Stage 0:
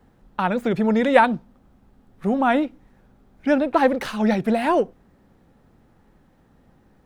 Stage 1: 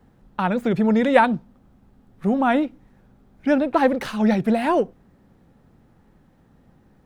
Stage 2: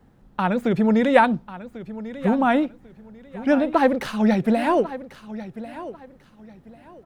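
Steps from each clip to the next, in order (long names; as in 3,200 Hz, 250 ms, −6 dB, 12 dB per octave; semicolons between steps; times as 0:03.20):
parametric band 140 Hz +4 dB 1.8 octaves; level −1 dB
repeating echo 1,094 ms, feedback 25%, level −15 dB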